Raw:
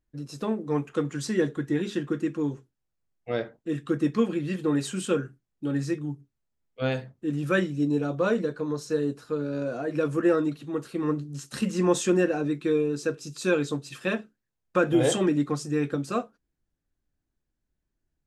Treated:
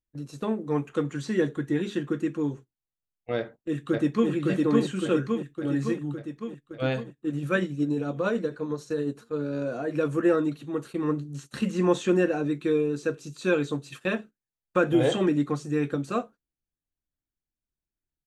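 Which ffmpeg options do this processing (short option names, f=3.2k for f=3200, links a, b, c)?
-filter_complex "[0:a]asplit=2[a][b];[b]afade=t=in:st=3.37:d=0.01,afade=t=out:st=4.3:d=0.01,aecho=0:1:560|1120|1680|2240|2800|3360|3920|4480|5040|5600|6160:0.944061|0.61364|0.398866|0.259263|0.168521|0.109538|0.0712|0.04628|0.030082|0.0195533|0.0127096[c];[a][c]amix=inputs=2:normalize=0,asplit=3[d][e][f];[d]afade=t=out:st=7.02:d=0.02[g];[e]tremolo=f=11:d=0.4,afade=t=in:st=7.02:d=0.02,afade=t=out:st=9.33:d=0.02[h];[f]afade=t=in:st=9.33:d=0.02[i];[g][h][i]amix=inputs=3:normalize=0,bandreject=f=5.1k:w=7.2,agate=range=-12dB:threshold=-42dB:ratio=16:detection=peak,acrossover=split=4800[j][k];[k]acompressor=threshold=-49dB:ratio=4:attack=1:release=60[l];[j][l]amix=inputs=2:normalize=0"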